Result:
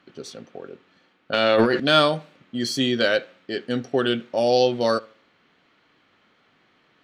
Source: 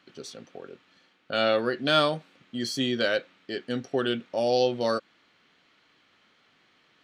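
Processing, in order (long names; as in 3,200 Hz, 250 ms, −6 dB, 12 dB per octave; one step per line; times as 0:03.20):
tape delay 73 ms, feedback 36%, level −21 dB, low-pass 2,400 Hz
0:01.33–0:01.80: transient designer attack −6 dB, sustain +12 dB
one half of a high-frequency compander decoder only
level +5 dB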